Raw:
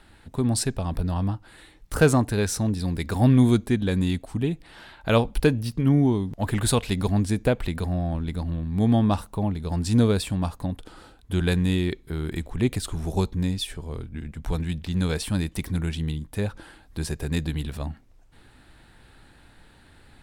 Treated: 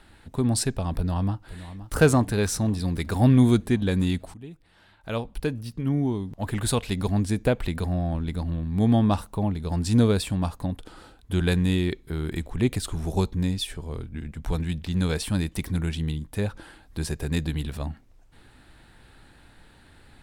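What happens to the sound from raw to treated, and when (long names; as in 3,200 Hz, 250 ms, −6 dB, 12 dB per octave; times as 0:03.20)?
0:00.95–0:01.96: delay throw 520 ms, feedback 75%, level −14 dB
0:04.34–0:07.73: fade in, from −18 dB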